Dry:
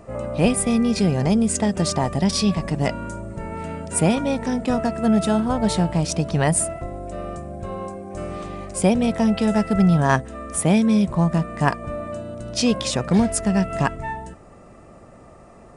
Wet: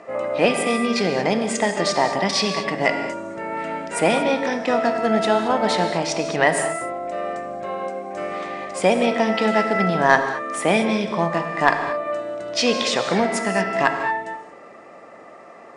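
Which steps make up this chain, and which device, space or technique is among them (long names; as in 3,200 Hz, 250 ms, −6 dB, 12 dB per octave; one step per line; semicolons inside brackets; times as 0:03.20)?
intercom (band-pass filter 400–4,900 Hz; parametric band 2,000 Hz +6.5 dB 0.34 octaves; soft clipping −6 dBFS, distortion −24 dB)
reverb whose tail is shaped and stops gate 250 ms flat, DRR 6 dB
level +5 dB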